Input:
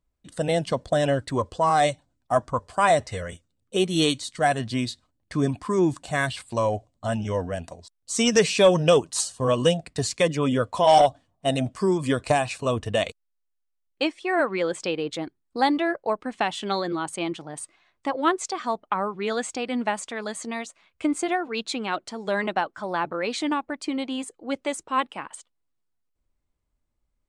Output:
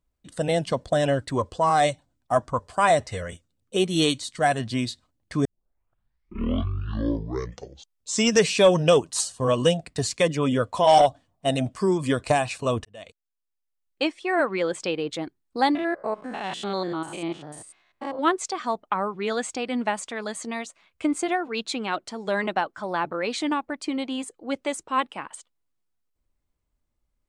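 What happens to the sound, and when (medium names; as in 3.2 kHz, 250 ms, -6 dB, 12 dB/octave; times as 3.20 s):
5.45 s: tape start 2.90 s
12.85–14.05 s: fade in
15.75–18.19 s: spectrogram pixelated in time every 100 ms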